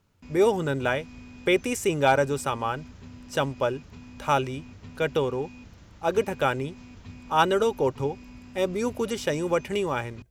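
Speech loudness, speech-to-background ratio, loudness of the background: -26.5 LUFS, 20.0 dB, -46.5 LUFS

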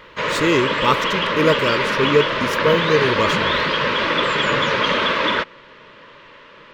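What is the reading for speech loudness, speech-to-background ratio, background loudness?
-20.5 LUFS, -1.5 dB, -19.0 LUFS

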